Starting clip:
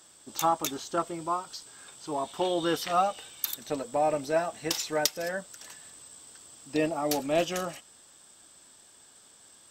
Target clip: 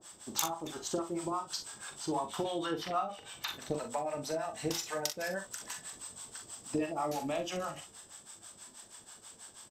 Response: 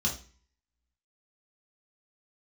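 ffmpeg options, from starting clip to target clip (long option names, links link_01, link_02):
-filter_complex "[0:a]asettb=1/sr,asplit=3[link_01][link_02][link_03];[link_01]atrim=end=2.664[link_04];[link_02]atrim=start=2.66:end=3.74,asetpts=PTS-STARTPTS,afade=type=in:duration=0.004:curve=qsin,afade=type=out:start_time=1.076:duration=0.004:curve=qsin,acrossover=split=4000[link_05][link_06];[link_06]acompressor=threshold=-52dB:ratio=4:attack=1:release=60[link_07];[link_05][link_07]amix=inputs=2:normalize=0[link_08];[link_03]atrim=start=3.736[link_09];[link_04][link_08]acrossfade=duration=0.004:curve1=hsin:curve2=qsin[link_10];[link_10][link_09]acrossfade=duration=0.004:curve1=qsin:curve2=hsin,equalizer=frequency=940:width=1.5:gain=3,acompressor=threshold=-33dB:ratio=16,acrossover=split=610[link_11][link_12];[link_11]aeval=exprs='val(0)*(1-1/2+1/2*cos(2*PI*6.2*n/s))':channel_layout=same[link_13];[link_12]aeval=exprs='val(0)*(1-1/2-1/2*cos(2*PI*6.2*n/s))':channel_layout=same[link_14];[link_13][link_14]amix=inputs=2:normalize=0,aecho=1:1:42|62:0.447|0.224,asplit=2[link_15][link_16];[1:a]atrim=start_sample=2205,asetrate=57330,aresample=44100[link_17];[link_16][link_17]afir=irnorm=-1:irlink=0,volume=-22.5dB[link_18];[link_15][link_18]amix=inputs=2:normalize=0,aresample=32000,aresample=44100,volume=6.5dB"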